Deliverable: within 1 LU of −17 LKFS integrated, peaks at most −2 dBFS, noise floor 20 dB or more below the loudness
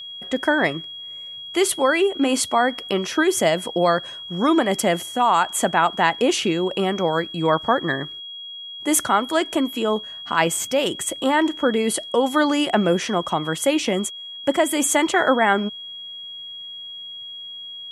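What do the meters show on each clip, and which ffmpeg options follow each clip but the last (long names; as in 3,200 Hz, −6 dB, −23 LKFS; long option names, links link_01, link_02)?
interfering tone 3,300 Hz; level of the tone −33 dBFS; integrated loudness −20.5 LKFS; sample peak −3.0 dBFS; target loudness −17.0 LKFS
→ -af "bandreject=frequency=3300:width=30"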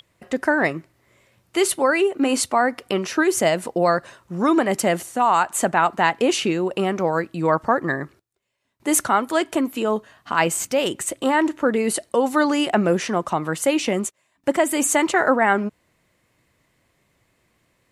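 interfering tone none found; integrated loudness −21.0 LKFS; sample peak −3.5 dBFS; target loudness −17.0 LKFS
→ -af "volume=4dB,alimiter=limit=-2dB:level=0:latency=1"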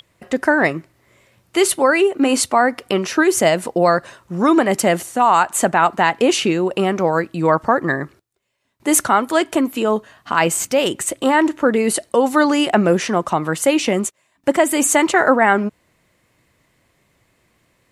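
integrated loudness −17.0 LKFS; sample peak −2.0 dBFS; background noise floor −63 dBFS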